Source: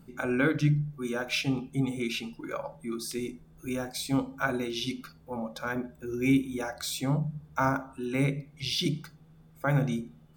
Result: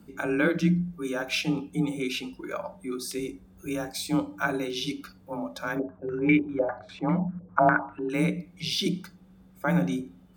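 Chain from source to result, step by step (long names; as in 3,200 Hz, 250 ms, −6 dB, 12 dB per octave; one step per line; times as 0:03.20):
frequency shifter +28 Hz
0:05.79–0:08.10: low-pass on a step sequencer 10 Hz 550–2,100 Hz
level +1.5 dB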